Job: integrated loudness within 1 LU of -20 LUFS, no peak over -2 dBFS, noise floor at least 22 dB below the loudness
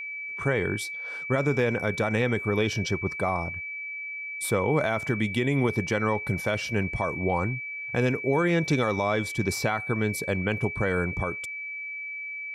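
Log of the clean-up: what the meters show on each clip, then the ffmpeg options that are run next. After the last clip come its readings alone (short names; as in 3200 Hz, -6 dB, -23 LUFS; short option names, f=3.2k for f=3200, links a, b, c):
steady tone 2300 Hz; tone level -33 dBFS; loudness -27.0 LUFS; peak -13.5 dBFS; loudness target -20.0 LUFS
-> -af "bandreject=f=2.3k:w=30"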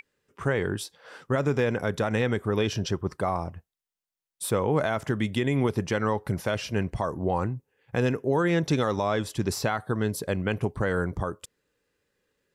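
steady tone none; loudness -27.5 LUFS; peak -13.5 dBFS; loudness target -20.0 LUFS
-> -af "volume=7.5dB"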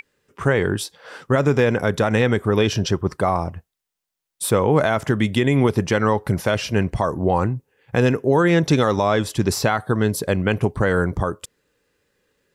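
loudness -20.0 LUFS; peak -6.0 dBFS; noise floor -83 dBFS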